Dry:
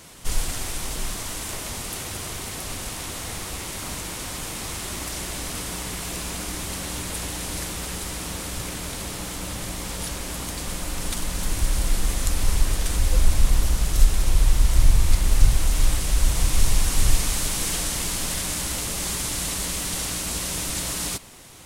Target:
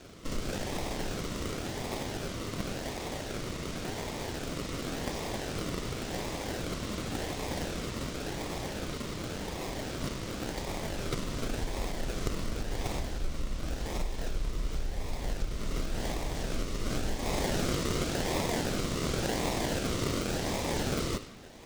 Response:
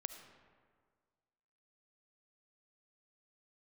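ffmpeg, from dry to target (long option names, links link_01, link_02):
-filter_complex "[0:a]acompressor=threshold=-20dB:ratio=3,aemphasis=mode=production:type=50fm[link_01];[1:a]atrim=start_sample=2205[link_02];[link_01][link_02]afir=irnorm=-1:irlink=0,acrossover=split=410|820|5800[link_03][link_04][link_05][link_06];[link_06]acrusher=samples=42:mix=1:aa=0.000001:lfo=1:lforange=25.2:lforate=0.91[link_07];[link_03][link_04][link_05][link_07]amix=inputs=4:normalize=0,volume=-7.5dB"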